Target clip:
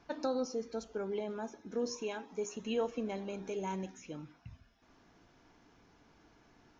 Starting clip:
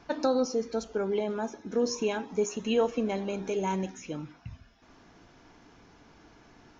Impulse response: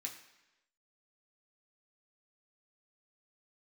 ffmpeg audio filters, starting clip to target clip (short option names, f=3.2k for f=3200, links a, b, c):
-filter_complex "[0:a]asettb=1/sr,asplit=3[a][b][c];[a]atrim=end=1.964[d];[b]atrim=start=1.96:end=2.45,asetpts=PTS-STARTPTS,afade=t=in:d=0.004:c=qsin,afade=t=out:st=0.486:d=0.004:c=qsin,equalizer=f=82:w=0.45:g=-8.5[e];[c]atrim=start=2.446[f];[d][e]acrossfade=d=0.004:c1=hsin:c2=qsin[g];[g][f]acrossfade=d=0.004:c1=qsin:c2=hsin,volume=-8dB"